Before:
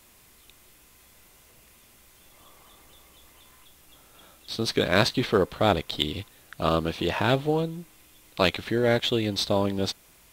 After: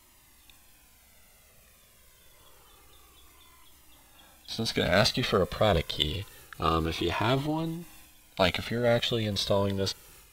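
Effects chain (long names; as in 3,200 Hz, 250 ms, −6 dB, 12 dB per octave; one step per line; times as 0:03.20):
transient designer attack +2 dB, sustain +7 dB
flanger whose copies keep moving one way falling 0.27 Hz
level +1 dB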